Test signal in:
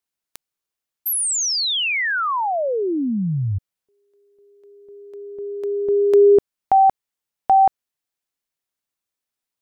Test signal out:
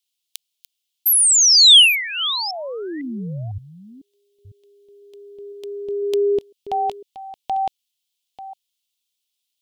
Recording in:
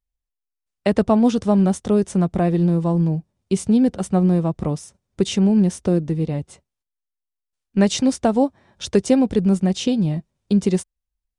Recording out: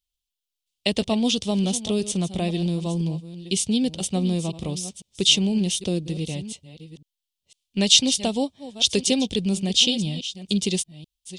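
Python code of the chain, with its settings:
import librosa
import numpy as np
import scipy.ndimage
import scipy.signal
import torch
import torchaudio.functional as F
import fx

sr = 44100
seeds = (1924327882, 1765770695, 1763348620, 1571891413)

y = fx.reverse_delay(x, sr, ms=502, wet_db=-14)
y = fx.high_shelf_res(y, sr, hz=2200.0, db=13.0, q=3.0)
y = F.gain(torch.from_numpy(y), -6.5).numpy()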